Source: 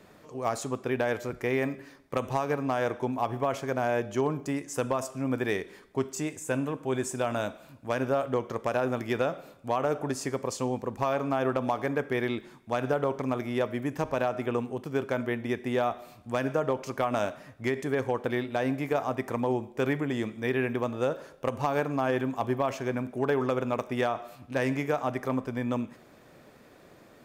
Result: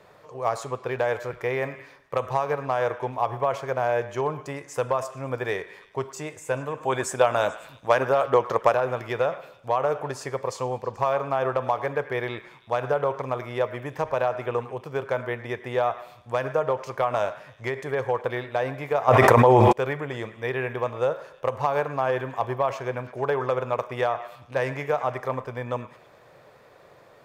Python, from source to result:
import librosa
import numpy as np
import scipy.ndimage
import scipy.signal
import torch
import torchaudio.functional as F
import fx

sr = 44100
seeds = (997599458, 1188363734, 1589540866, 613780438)

y = fx.graphic_eq_10(x, sr, hz=(125, 250, 500, 1000, 2000, 4000), db=(7, -9, 9, 8, 4, 4))
y = fx.hpss(y, sr, part='percussive', gain_db=8, at=(6.77, 8.75))
y = fx.echo_stepped(y, sr, ms=108, hz=1400.0, octaves=0.7, feedback_pct=70, wet_db=-12.0)
y = fx.env_flatten(y, sr, amount_pct=100, at=(19.07, 19.71), fade=0.02)
y = y * 10.0 ** (-4.5 / 20.0)